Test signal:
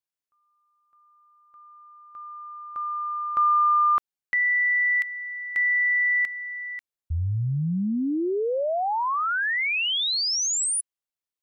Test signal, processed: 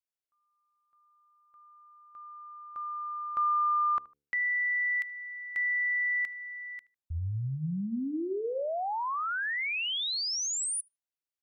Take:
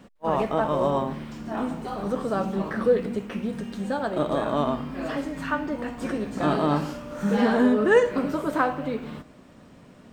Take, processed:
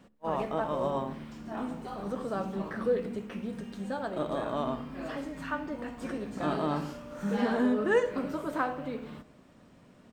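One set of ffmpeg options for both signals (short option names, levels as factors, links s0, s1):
-filter_complex "[0:a]bandreject=f=72:t=h:w=4,bandreject=f=144:t=h:w=4,bandreject=f=216:t=h:w=4,bandreject=f=288:t=h:w=4,bandreject=f=360:t=h:w=4,bandreject=f=432:t=h:w=4,bandreject=f=504:t=h:w=4,asplit=2[s0][s1];[s1]adelay=76,lowpass=f=2600:p=1,volume=0.0891,asplit=2[s2][s3];[s3]adelay=76,lowpass=f=2600:p=1,volume=0.29[s4];[s2][s4]amix=inputs=2:normalize=0[s5];[s0][s5]amix=inputs=2:normalize=0,volume=0.447"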